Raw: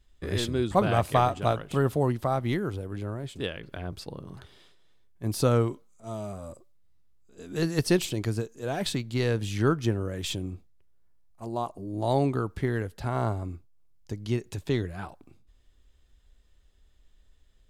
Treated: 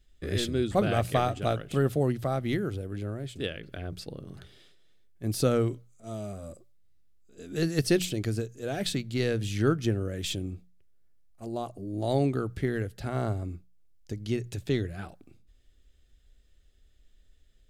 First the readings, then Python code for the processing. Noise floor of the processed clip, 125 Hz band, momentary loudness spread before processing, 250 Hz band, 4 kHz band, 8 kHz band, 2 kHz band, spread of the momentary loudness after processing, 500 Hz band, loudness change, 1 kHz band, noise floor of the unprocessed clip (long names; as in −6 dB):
−61 dBFS, −1.5 dB, 15 LU, −0.5 dB, 0.0 dB, 0.0 dB, −1.0 dB, 15 LU, −1.0 dB, −1.5 dB, −5.0 dB, −61 dBFS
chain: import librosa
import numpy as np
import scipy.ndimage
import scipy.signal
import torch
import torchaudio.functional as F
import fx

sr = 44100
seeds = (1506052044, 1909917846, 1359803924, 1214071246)

y = fx.peak_eq(x, sr, hz=970.0, db=-12.5, octaves=0.51)
y = fx.hum_notches(y, sr, base_hz=60, count=3)